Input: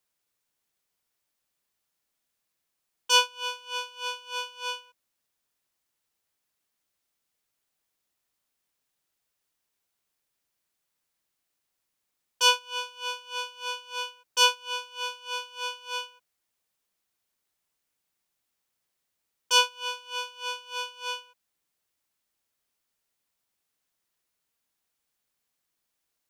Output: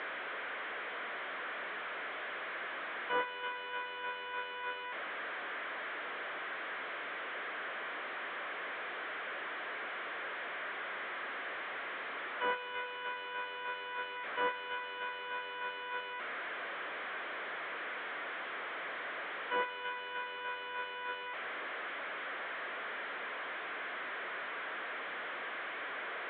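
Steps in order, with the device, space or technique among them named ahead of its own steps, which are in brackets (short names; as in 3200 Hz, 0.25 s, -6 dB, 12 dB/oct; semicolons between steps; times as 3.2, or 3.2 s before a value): 12.5–13.03 notch 1100 Hz, Q 7.5; digital answering machine (BPF 380–3300 Hz; delta modulation 16 kbps, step -29.5 dBFS; speaker cabinet 410–3900 Hz, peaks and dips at 860 Hz -7 dB, 1600 Hz +3 dB, 2700 Hz -9 dB); gain -3 dB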